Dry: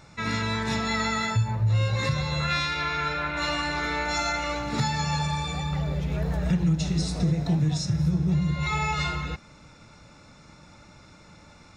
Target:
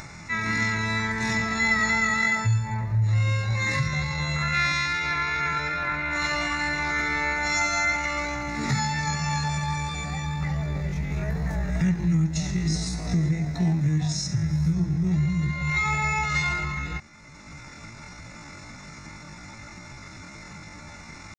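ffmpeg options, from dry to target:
ffmpeg -i in.wav -af "equalizer=frequency=500:width_type=o:width=0.33:gain=-8,equalizer=frequency=2000:width_type=o:width=0.33:gain=10,equalizer=frequency=3150:width_type=o:width=0.33:gain=-9,equalizer=frequency=6300:width_type=o:width=0.33:gain=6,acompressor=mode=upward:threshold=-32dB:ratio=2.5,atempo=0.55" out.wav

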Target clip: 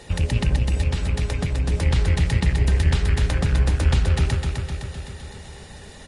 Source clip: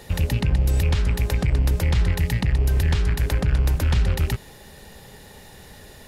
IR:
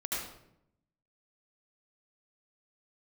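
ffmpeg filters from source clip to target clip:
-filter_complex "[0:a]asettb=1/sr,asplit=3[link_01][link_02][link_03];[link_01]atrim=end=0.564[link_04];[link_02]atrim=start=0.56:end=1.71,asetpts=PTS-STARTPTS,afade=type=in:duration=0.004:curve=qsin,afade=type=out:start_time=1.146:duration=0.004:curve=qsin,acompressor=threshold=-20dB:ratio=5[link_05];[link_03]atrim=start=1.706[link_06];[link_04][link_05]acrossfade=duration=0.004:curve1=hsin:curve2=qsin[link_07];[link_07][link_06]acrossfade=duration=0.004:curve1=qsin:curve2=hsin,aecho=1:1:256|512|768|1024|1280|1536|1792|2048:0.562|0.332|0.196|0.115|0.0681|0.0402|0.0237|0.014" -ar 22050 -c:a libvorbis -b:a 32k

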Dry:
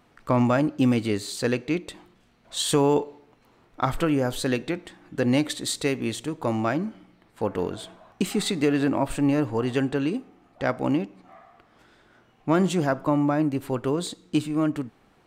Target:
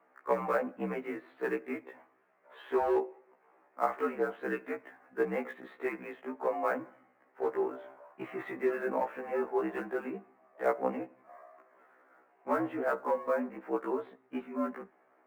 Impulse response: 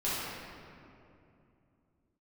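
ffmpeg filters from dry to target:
-filter_complex "[0:a]aemphasis=mode=reproduction:type=50fm,asplit=2[link_01][link_02];[link_02]aeval=exprs='0.133*(abs(mod(val(0)/0.133+3,4)-2)-1)':channel_layout=same,volume=-11.5dB[link_03];[link_01][link_03]amix=inputs=2:normalize=0,highpass=frequency=430:width_type=q:width=0.5412,highpass=frequency=430:width_type=q:width=1.307,lowpass=frequency=2200:width_type=q:width=0.5176,lowpass=frequency=2200:width_type=q:width=0.7071,lowpass=frequency=2200:width_type=q:width=1.932,afreqshift=-60,acrossover=split=600|1200[link_04][link_05][link_06];[link_04]volume=22dB,asoftclip=hard,volume=-22dB[link_07];[link_06]acrusher=bits=5:mode=log:mix=0:aa=0.000001[link_08];[link_07][link_05][link_08]amix=inputs=3:normalize=0,afftfilt=real='re*1.73*eq(mod(b,3),0)':imag='im*1.73*eq(mod(b,3),0)':win_size=2048:overlap=0.75,volume=-2.5dB"

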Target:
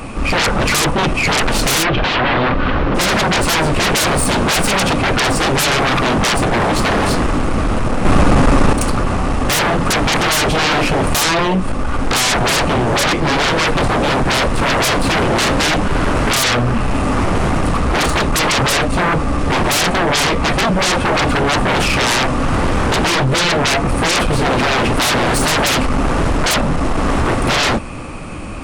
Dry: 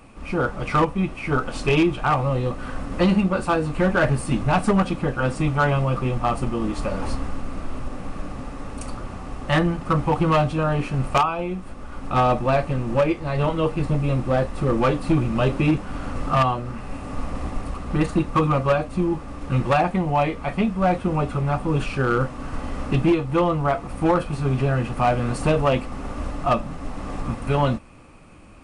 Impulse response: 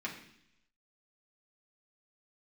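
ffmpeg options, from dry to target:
-filter_complex "[0:a]aeval=exprs='0.266*sin(PI/2*6.31*val(0)/0.266)':channel_layout=same,asplit=3[link_01][link_02][link_03];[link_01]afade=type=out:start_time=1.83:duration=0.02[link_04];[link_02]lowpass=frequency=3900:width=0.5412,lowpass=frequency=3900:width=1.3066,afade=type=in:start_time=1.83:duration=0.02,afade=type=out:start_time=2.94:duration=0.02[link_05];[link_03]afade=type=in:start_time=2.94:duration=0.02[link_06];[link_04][link_05][link_06]amix=inputs=3:normalize=0,asettb=1/sr,asplit=3[link_07][link_08][link_09];[link_07]atrim=end=8.054[link_10];[link_08]atrim=start=8.05:end=8.73,asetpts=PTS-STARTPTS,afade=type=in:duration=0.004:curve=qsin,afade=type=out:start_time=0.676:duration=0.004:curve=qsin,acontrast=84[link_11];[link_09]atrim=start=8.726[link_12];[link_10][link_11]acrossfade=duration=0.004:curve1=hsin:curve2=qsin[link_13];[link_13][link_12]acrossfade=duration=0.004:curve1=qsin:curve2=hsin"

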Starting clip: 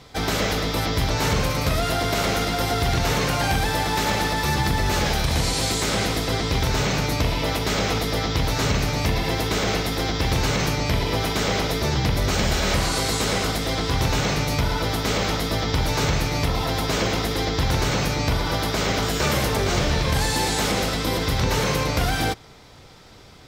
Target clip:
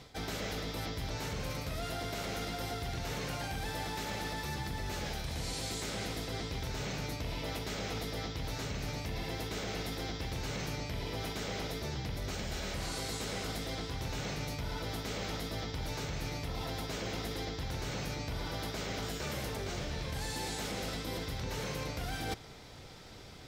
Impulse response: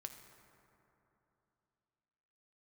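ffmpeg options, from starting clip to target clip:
-af "equalizer=frequency=1100:width=2.5:gain=-3.5,areverse,acompressor=threshold=-31dB:ratio=10,areverse,volume=-3.5dB"

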